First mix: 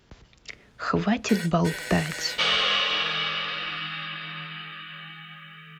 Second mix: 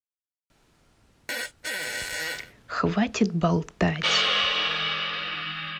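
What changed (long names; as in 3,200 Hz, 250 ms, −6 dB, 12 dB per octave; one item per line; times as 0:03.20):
speech: entry +1.90 s
first sound +4.0 dB
second sound: entry +1.65 s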